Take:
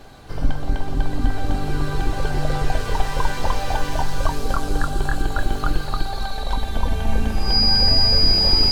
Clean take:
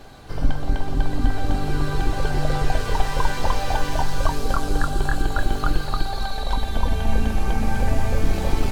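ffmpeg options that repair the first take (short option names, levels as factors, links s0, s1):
-af "bandreject=f=4900:w=30"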